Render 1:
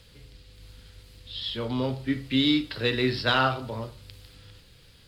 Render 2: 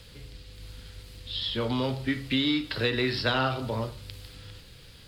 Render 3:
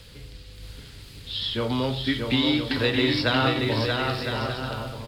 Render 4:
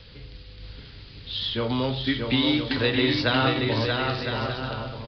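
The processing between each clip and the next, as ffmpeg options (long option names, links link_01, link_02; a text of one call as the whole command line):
ffmpeg -i in.wav -filter_complex "[0:a]acrossover=split=760|1600[link_01][link_02][link_03];[link_01]acompressor=threshold=-31dB:ratio=4[link_04];[link_02]acompressor=threshold=-40dB:ratio=4[link_05];[link_03]acompressor=threshold=-34dB:ratio=4[link_06];[link_04][link_05][link_06]amix=inputs=3:normalize=0,volume=4.5dB" out.wav
ffmpeg -i in.wav -af "aecho=1:1:630|1008|1235|1371|1453:0.631|0.398|0.251|0.158|0.1,volume=2.5dB" out.wav
ffmpeg -i in.wav -af "aresample=11025,aresample=44100" out.wav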